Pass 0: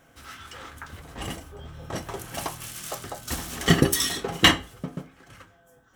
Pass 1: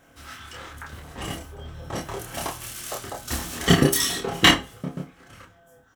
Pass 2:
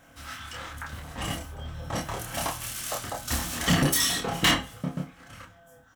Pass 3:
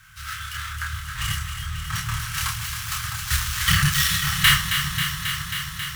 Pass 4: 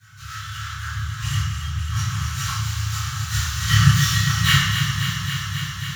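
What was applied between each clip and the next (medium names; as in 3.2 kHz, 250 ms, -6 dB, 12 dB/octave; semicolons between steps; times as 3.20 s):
doubling 28 ms -2.5 dB
peaking EQ 390 Hz -11.5 dB 0.34 oct; saturation -18.5 dBFS, distortion -6 dB; trim +1.5 dB
dead-time distortion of 0.059 ms; elliptic band-stop 130–1300 Hz, stop band 60 dB; echo whose repeats swap between lows and highs 135 ms, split 960 Hz, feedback 90%, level -7 dB; trim +8.5 dB
reverse; upward compressor, threshold -36 dBFS; reverse; reverberation RT60 1.1 s, pre-delay 3 ms, DRR -10.5 dB; trim -17 dB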